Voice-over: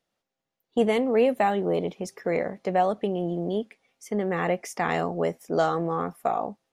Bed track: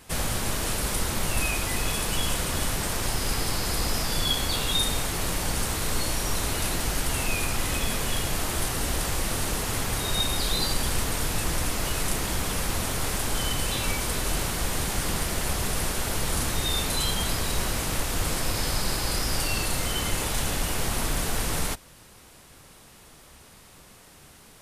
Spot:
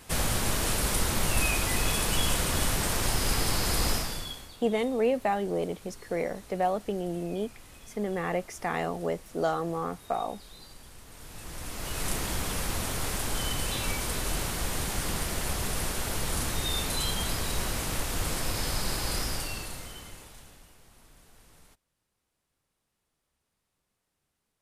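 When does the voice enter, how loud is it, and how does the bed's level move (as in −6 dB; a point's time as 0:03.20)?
3.85 s, −4.5 dB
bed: 0:03.91 0 dB
0:04.57 −23.5 dB
0:11.01 −23.5 dB
0:12.08 −3.5 dB
0:19.21 −3.5 dB
0:20.80 −30 dB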